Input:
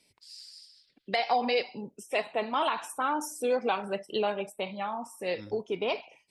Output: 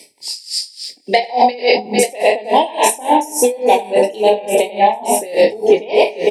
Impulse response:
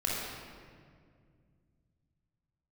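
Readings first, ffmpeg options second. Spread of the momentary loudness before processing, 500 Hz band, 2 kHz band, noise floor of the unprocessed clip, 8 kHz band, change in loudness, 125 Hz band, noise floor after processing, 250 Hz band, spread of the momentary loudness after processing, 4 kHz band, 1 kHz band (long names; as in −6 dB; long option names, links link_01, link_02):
16 LU, +17.5 dB, +13.0 dB, −69 dBFS, +23.0 dB, +16.0 dB, can't be measured, −44 dBFS, +14.5 dB, 8 LU, +14.5 dB, +16.0 dB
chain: -filter_complex "[0:a]flanger=delay=0.3:depth=5.1:regen=-89:speed=0.37:shape=triangular,asuperstop=centerf=1300:order=8:qfactor=1.6,equalizer=frequency=1700:width_type=o:width=2:gain=-5,aecho=1:1:99|151|450|891:0.631|0.282|0.158|0.112,asplit=2[link_01][link_02];[1:a]atrim=start_sample=2205[link_03];[link_02][link_03]afir=irnorm=-1:irlink=0,volume=-29dB[link_04];[link_01][link_04]amix=inputs=2:normalize=0,dynaudnorm=framelen=230:gausssize=7:maxgain=8.5dB,asplit=2[link_05][link_06];[link_06]adelay=24,volume=-5dB[link_07];[link_05][link_07]amix=inputs=2:normalize=0,areverse,acompressor=threshold=-35dB:ratio=6,areverse,highpass=340,equalizer=frequency=3700:width_type=o:width=1:gain=-5,alimiter=level_in=34.5dB:limit=-1dB:release=50:level=0:latency=1,aeval=exprs='val(0)*pow(10,-22*(0.5-0.5*cos(2*PI*3.5*n/s))/20)':channel_layout=same"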